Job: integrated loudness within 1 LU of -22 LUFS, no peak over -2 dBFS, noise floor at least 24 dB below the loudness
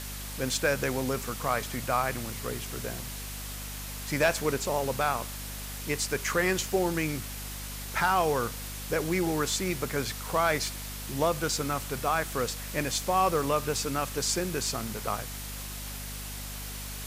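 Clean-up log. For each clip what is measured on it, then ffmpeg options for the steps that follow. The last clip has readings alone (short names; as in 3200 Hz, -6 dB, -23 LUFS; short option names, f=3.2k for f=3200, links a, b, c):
hum 50 Hz; harmonics up to 250 Hz; hum level -39 dBFS; noise floor -38 dBFS; noise floor target -54 dBFS; loudness -30.0 LUFS; peak -14.0 dBFS; loudness target -22.0 LUFS
-> -af "bandreject=f=50:t=h:w=6,bandreject=f=100:t=h:w=6,bandreject=f=150:t=h:w=6,bandreject=f=200:t=h:w=6,bandreject=f=250:t=h:w=6"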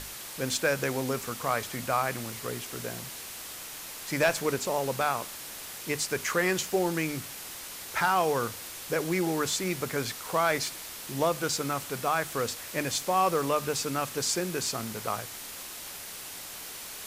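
hum none; noise floor -42 dBFS; noise floor target -54 dBFS
-> -af "afftdn=nr=12:nf=-42"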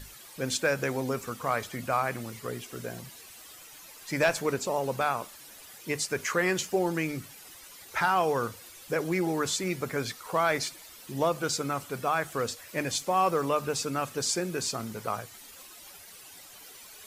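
noise floor -49 dBFS; noise floor target -54 dBFS
-> -af "afftdn=nr=6:nf=-49"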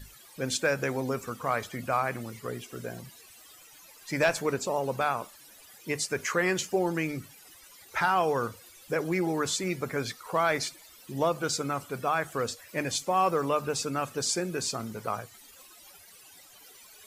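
noise floor -53 dBFS; noise floor target -54 dBFS
-> -af "afftdn=nr=6:nf=-53"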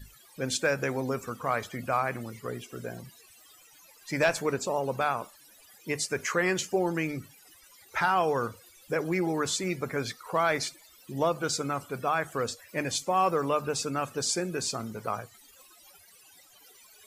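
noise floor -57 dBFS; loudness -30.0 LUFS; peak -14.5 dBFS; loudness target -22.0 LUFS
-> -af "volume=8dB"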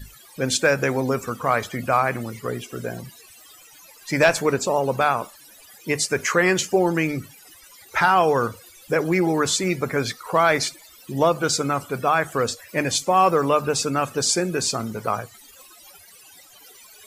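loudness -22.0 LUFS; peak -6.5 dBFS; noise floor -49 dBFS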